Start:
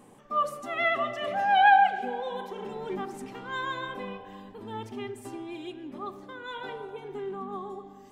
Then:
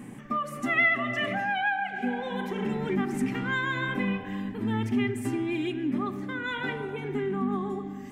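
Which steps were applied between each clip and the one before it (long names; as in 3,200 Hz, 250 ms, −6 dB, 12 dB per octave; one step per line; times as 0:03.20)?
downward compressor 5 to 1, threshold −33 dBFS, peak gain reduction 16.5 dB
octave-band graphic EQ 125/250/500/1,000/2,000/4,000 Hz +8/+9/−6/−5/+10/−5 dB
level +6.5 dB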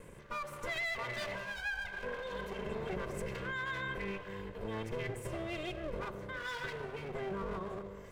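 lower of the sound and its delayed copy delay 1.9 ms
brickwall limiter −23.5 dBFS, peak gain reduction 8.5 dB
level −6.5 dB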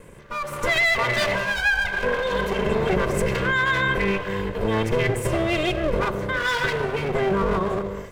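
automatic gain control gain up to 10.5 dB
level +6.5 dB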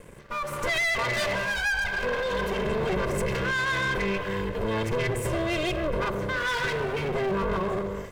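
leveller curve on the samples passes 2
level −8.5 dB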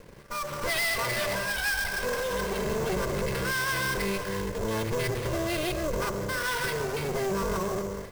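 sample-rate reduction 6,900 Hz, jitter 20%
level −2 dB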